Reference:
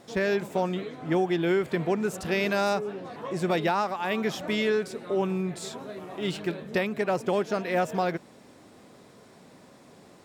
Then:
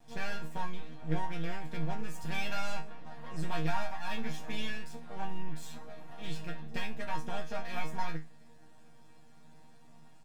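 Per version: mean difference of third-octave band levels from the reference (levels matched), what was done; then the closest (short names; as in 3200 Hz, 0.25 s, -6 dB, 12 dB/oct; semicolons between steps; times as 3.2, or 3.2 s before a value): 5.0 dB: bell 95 Hz +10 dB 1.5 oct; comb 1.2 ms, depth 86%; half-wave rectifier; resonator bank D#3 fifth, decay 0.27 s; gain +5 dB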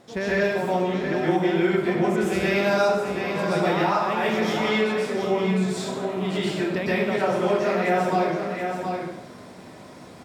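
7.0 dB: on a send: echo 0.726 s -9 dB; on the sum: plate-style reverb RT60 0.82 s, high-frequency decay 0.85×, pre-delay 0.11 s, DRR -9 dB; compressor 1.5:1, threshold -27 dBFS, peak gain reduction 6 dB; high shelf 6800 Hz -5 dB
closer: first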